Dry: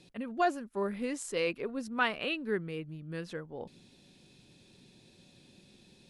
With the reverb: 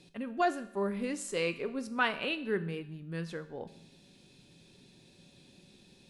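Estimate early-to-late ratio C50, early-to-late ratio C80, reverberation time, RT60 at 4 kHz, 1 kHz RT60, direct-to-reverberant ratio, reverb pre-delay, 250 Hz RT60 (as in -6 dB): 14.5 dB, 16.5 dB, 0.80 s, 0.75 s, 0.80 s, 10.5 dB, 5 ms, 0.80 s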